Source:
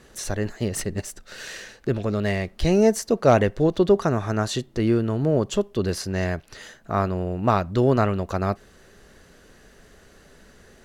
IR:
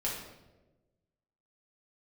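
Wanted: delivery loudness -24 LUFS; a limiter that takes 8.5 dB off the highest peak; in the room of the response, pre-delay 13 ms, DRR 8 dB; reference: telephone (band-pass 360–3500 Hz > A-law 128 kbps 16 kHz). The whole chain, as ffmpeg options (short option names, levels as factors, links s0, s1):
-filter_complex "[0:a]alimiter=limit=0.178:level=0:latency=1,asplit=2[s0][s1];[1:a]atrim=start_sample=2205,adelay=13[s2];[s1][s2]afir=irnorm=-1:irlink=0,volume=0.237[s3];[s0][s3]amix=inputs=2:normalize=0,highpass=360,lowpass=3500,volume=1.88" -ar 16000 -c:a pcm_alaw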